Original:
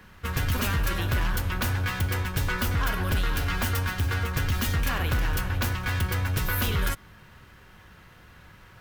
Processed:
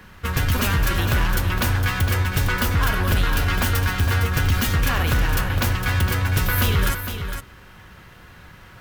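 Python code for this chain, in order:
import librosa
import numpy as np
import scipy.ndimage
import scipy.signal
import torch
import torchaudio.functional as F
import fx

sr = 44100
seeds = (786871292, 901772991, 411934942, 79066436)

y = x + 10.0 ** (-8.5 / 20.0) * np.pad(x, (int(459 * sr / 1000.0), 0))[:len(x)]
y = y * 10.0 ** (5.5 / 20.0)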